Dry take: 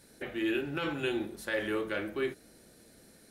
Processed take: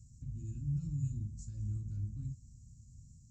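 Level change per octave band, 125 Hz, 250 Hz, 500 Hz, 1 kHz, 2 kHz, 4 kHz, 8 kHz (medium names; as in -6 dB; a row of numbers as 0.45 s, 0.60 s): +11.0 dB, -11.0 dB, under -35 dB, under -40 dB, under -40 dB, under -30 dB, -5.0 dB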